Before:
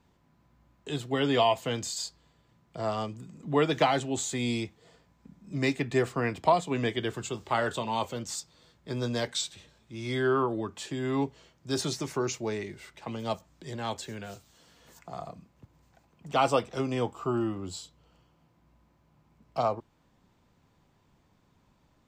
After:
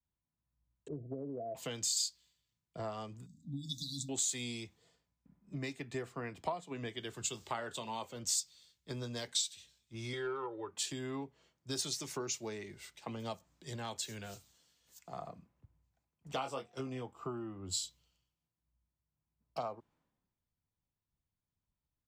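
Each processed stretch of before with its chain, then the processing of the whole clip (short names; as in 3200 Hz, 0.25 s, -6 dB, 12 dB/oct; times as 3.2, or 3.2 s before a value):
0.88–1.55 steep low-pass 680 Hz 96 dB/oct + compressor 3:1, threshold -29 dBFS
3.26–4.09 brick-wall FIR band-stop 290–3400 Hz + notches 50/100/150/200/250/300/350/400/450/500 Hz
10.13–10.71 overdrive pedal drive 9 dB, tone 2500 Hz, clips at -17 dBFS + comb 2.2 ms, depth 83%
16.33–17.01 gate -39 dBFS, range -7 dB + whine 720 Hz -47 dBFS + doubler 23 ms -4.5 dB
whole clip: high shelf 3000 Hz +7 dB; compressor 8:1, threshold -36 dBFS; three-band expander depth 100%; gain -2.5 dB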